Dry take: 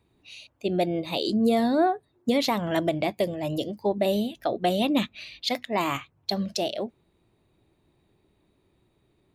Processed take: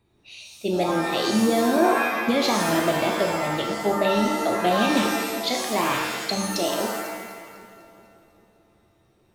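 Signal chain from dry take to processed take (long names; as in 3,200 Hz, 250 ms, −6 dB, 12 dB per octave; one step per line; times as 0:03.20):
0:03.50–0:04.21: high shelf with overshoot 5,300 Hz −8.5 dB, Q 1.5
echo with a time of its own for lows and highs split 500 Hz, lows 394 ms, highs 249 ms, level −15 dB
reverb with rising layers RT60 1 s, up +7 semitones, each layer −2 dB, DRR 1.5 dB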